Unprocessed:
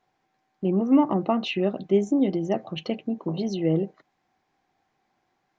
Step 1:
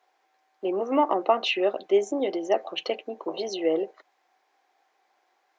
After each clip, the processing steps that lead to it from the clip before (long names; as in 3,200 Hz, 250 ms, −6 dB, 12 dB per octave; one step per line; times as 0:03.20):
high-pass filter 410 Hz 24 dB per octave
level +4.5 dB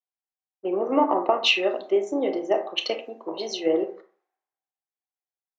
downward compressor, threshold −22 dBFS, peak gain reduction 7.5 dB
on a send at −5.5 dB: convolution reverb RT60 0.60 s, pre-delay 23 ms
on the sum: multiband upward and downward expander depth 100%
level +2 dB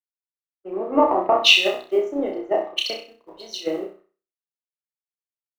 mu-law and A-law mismatch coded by A
flutter between parallel walls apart 5.5 metres, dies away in 0.49 s
multiband upward and downward expander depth 100%
level −1 dB